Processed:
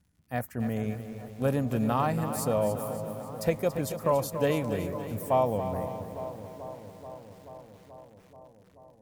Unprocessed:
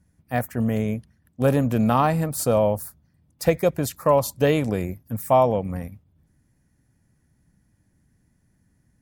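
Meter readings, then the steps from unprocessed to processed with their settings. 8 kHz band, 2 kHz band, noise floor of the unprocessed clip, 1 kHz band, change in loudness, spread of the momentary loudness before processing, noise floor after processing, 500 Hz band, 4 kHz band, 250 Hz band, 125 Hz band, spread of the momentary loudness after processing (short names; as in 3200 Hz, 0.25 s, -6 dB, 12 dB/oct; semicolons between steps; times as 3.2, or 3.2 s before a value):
-7.0 dB, -7.0 dB, -66 dBFS, -6.5 dB, -7.0 dB, 12 LU, -59 dBFS, -6.5 dB, -7.0 dB, -6.5 dB, -6.5 dB, 18 LU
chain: crackle 140/s -51 dBFS; analogue delay 0.432 s, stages 4096, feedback 74%, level -13 dB; lo-fi delay 0.282 s, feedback 55%, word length 7-bit, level -10 dB; gain -7.5 dB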